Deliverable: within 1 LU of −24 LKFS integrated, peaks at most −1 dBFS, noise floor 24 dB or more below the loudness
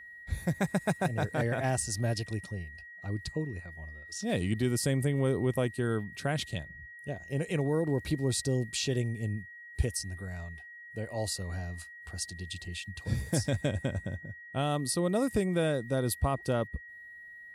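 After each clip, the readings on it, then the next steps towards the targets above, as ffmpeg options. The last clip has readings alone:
interfering tone 1,900 Hz; level of the tone −46 dBFS; integrated loudness −32.5 LKFS; sample peak −15.5 dBFS; target loudness −24.0 LKFS
→ -af "bandreject=frequency=1900:width=30"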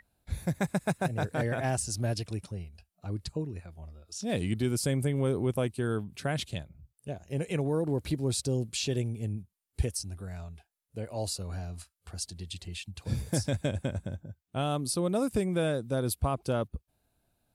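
interfering tone none found; integrated loudness −32.5 LKFS; sample peak −15.5 dBFS; target loudness −24.0 LKFS
→ -af "volume=8.5dB"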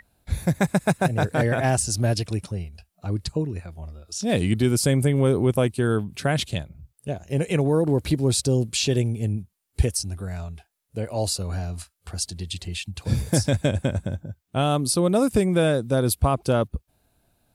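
integrated loudness −24.0 LKFS; sample peak −7.0 dBFS; background noise floor −73 dBFS

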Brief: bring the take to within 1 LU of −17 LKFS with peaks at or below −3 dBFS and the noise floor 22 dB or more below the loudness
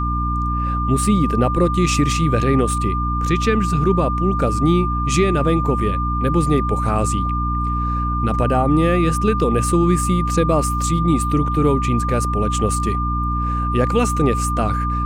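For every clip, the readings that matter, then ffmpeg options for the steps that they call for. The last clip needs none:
mains hum 60 Hz; hum harmonics up to 300 Hz; level of the hum −19 dBFS; interfering tone 1,200 Hz; level of the tone −22 dBFS; integrated loudness −18.5 LKFS; sample peak −4.5 dBFS; target loudness −17.0 LKFS
→ -af "bandreject=frequency=60:width_type=h:width=6,bandreject=frequency=120:width_type=h:width=6,bandreject=frequency=180:width_type=h:width=6,bandreject=frequency=240:width_type=h:width=6,bandreject=frequency=300:width_type=h:width=6"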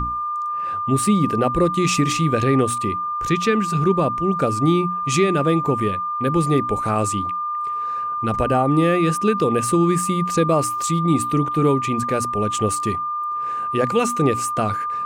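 mains hum none found; interfering tone 1,200 Hz; level of the tone −22 dBFS
→ -af "bandreject=frequency=1200:width=30"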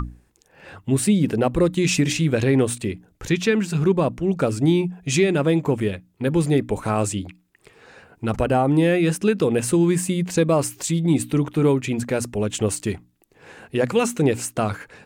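interfering tone none found; integrated loudness −21.5 LKFS; sample peak −5.5 dBFS; target loudness −17.0 LKFS
→ -af "volume=4.5dB,alimiter=limit=-3dB:level=0:latency=1"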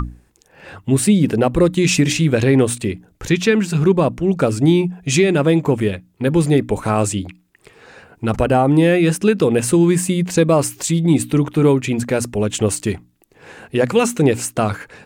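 integrated loudness −17.0 LKFS; sample peak −3.0 dBFS; background noise floor −57 dBFS

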